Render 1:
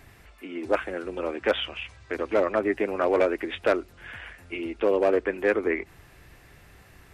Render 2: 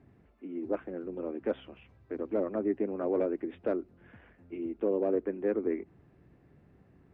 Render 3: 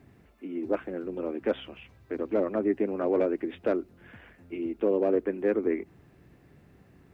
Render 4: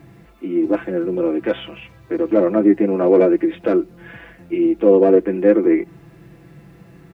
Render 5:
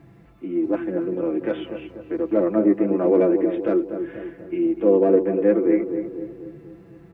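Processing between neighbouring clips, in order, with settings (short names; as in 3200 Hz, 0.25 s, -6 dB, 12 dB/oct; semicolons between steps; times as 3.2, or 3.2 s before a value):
band-pass 220 Hz, Q 1.2
high shelf 2500 Hz +11.5 dB; gain +3.5 dB
comb 6 ms, depth 59%; harmonic-percussive split harmonic +8 dB; gain +5 dB
high shelf 2700 Hz -7.5 dB; darkening echo 0.244 s, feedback 53%, low-pass 1300 Hz, level -8 dB; gain -4.5 dB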